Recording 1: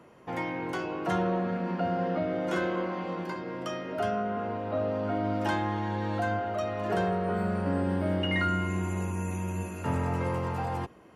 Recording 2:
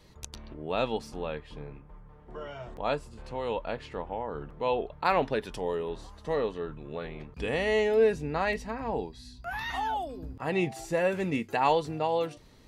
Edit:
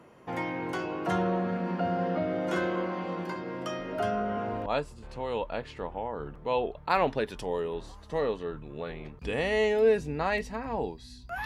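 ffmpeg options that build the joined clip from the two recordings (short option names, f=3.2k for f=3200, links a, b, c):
-filter_complex "[1:a]asplit=2[a][b];[0:a]apad=whole_dur=11.45,atrim=end=11.45,atrim=end=4.662[c];[b]atrim=start=2.808:end=9.6[d];[a]atrim=start=1.94:end=2.81,asetpts=PTS-STARTPTS,volume=-6dB,afade=t=in:d=0.004:c=hsin,afade=t=out:st=0.866:d=0.004:c=hsin,adelay=3790[e];[c][d]acrossfade=d=0.004:c1=hsin:c2=hsin[f];[f][e]amix=inputs=2:normalize=0"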